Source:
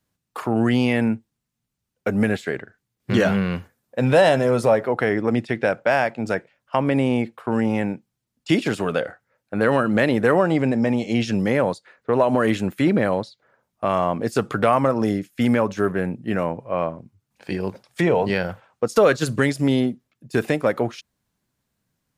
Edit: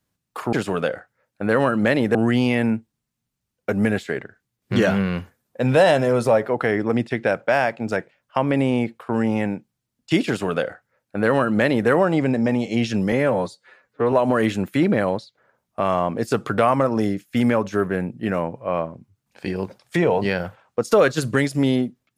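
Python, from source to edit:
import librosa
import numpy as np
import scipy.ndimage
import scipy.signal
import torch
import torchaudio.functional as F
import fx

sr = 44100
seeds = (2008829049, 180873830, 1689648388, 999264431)

y = fx.edit(x, sr, fx.duplicate(start_s=8.65, length_s=1.62, to_s=0.53),
    fx.stretch_span(start_s=11.5, length_s=0.67, factor=1.5), tone=tone)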